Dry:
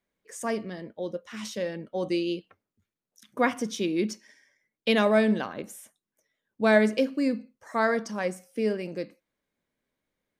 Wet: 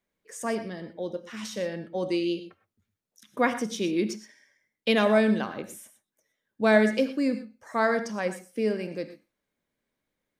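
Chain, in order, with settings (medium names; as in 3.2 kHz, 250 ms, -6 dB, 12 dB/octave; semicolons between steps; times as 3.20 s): gated-style reverb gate 140 ms rising, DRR 11 dB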